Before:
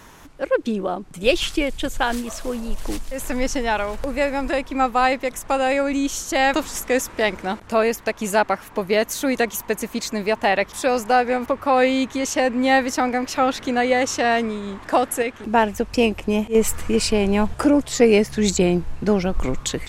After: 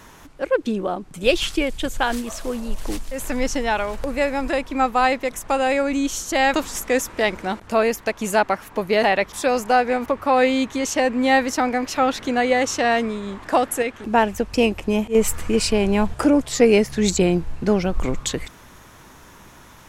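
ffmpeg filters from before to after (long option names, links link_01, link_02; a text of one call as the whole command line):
ffmpeg -i in.wav -filter_complex "[0:a]asplit=2[link_01][link_02];[link_01]atrim=end=9.032[link_03];[link_02]atrim=start=10.428[link_04];[link_03][link_04]acrossfade=duration=0.004:curve1=hsin:curve2=hsin" out.wav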